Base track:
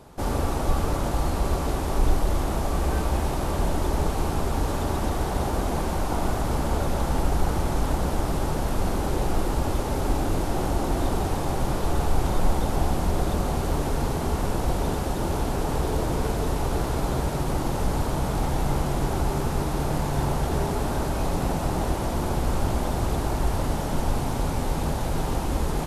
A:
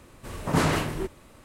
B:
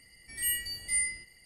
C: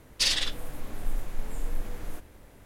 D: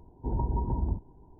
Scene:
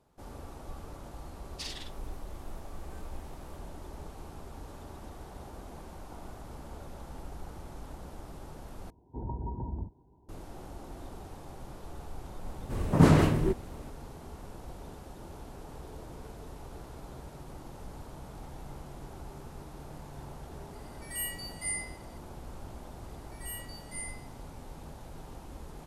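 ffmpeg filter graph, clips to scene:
-filter_complex "[2:a]asplit=2[a][b];[0:a]volume=-20dB[c];[4:a]highpass=53[d];[1:a]tiltshelf=f=640:g=6[e];[c]asplit=2[f][g];[f]atrim=end=8.904[h];[d]atrim=end=1.39,asetpts=PTS-STARTPTS,volume=-6dB[i];[g]atrim=start=10.286[j];[3:a]atrim=end=2.65,asetpts=PTS-STARTPTS,volume=-16dB,afade=t=in:d=0.004:c=hsin,afade=t=out:st=2.646:d=0.004:c=hsin,adelay=1390[k];[e]atrim=end=1.44,asetpts=PTS-STARTPTS,afade=t=in:d=0.004:c=hsin,afade=t=out:st=1.436:d=0.004:c=hsin,adelay=12460[l];[a]atrim=end=1.45,asetpts=PTS-STARTPTS,volume=-5.5dB,afade=t=in:d=0.004:c=hsin,afade=t=out:st=1.446:d=0.004:c=hsin,adelay=20730[m];[b]atrim=end=1.45,asetpts=PTS-STARTPTS,volume=-12dB,afade=t=in:d=0.004:c=hsin,afade=t=out:st=1.446:d=0.004:c=hsin,adelay=23030[n];[h][i]acrossfade=d=0.004:c1=hsin:c2=hsin[o];[o][j]acrossfade=d=0.004:c1=hsin:c2=hsin[p];[p][k][l][m][n]amix=inputs=5:normalize=0"

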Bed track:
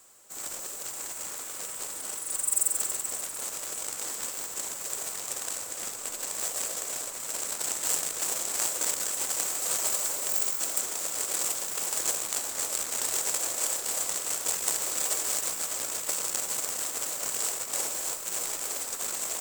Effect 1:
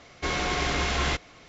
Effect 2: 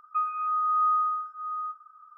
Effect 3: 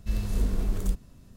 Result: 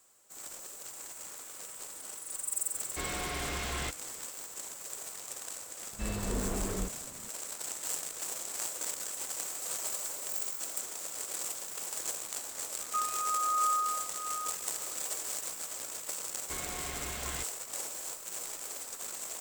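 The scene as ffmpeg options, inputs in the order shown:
-filter_complex "[1:a]asplit=2[a][b];[0:a]volume=-8dB[c];[a]asoftclip=type=tanh:threshold=-22.5dB[d];[3:a]asplit=2[e][f];[f]highpass=f=720:p=1,volume=24dB,asoftclip=type=tanh:threshold=-14dB[g];[e][g]amix=inputs=2:normalize=0,lowpass=f=1.3k:p=1,volume=-6dB[h];[d]atrim=end=1.48,asetpts=PTS-STARTPTS,volume=-7.5dB,afade=t=in:d=0.004:c=hsin,afade=t=out:st=1.476:d=0.004:c=hsin,adelay=2740[i];[h]atrim=end=1.36,asetpts=PTS-STARTPTS,volume=-7.5dB,afade=t=in:d=0.004:c=hsin,afade=t=out:st=1.356:d=0.004:c=hsin,adelay=261513S[j];[2:a]atrim=end=2.17,asetpts=PTS-STARTPTS,volume=-5.5dB,afade=t=in:d=0.004:c=hsin,afade=t=out:st=2.166:d=0.004:c=hsin,adelay=12790[k];[b]atrim=end=1.48,asetpts=PTS-STARTPTS,volume=-14.5dB,afade=t=in:d=0.004:c=hsin,afade=t=out:st=1.476:d=0.004:c=hsin,adelay=16270[l];[c][i][j][k][l]amix=inputs=5:normalize=0"

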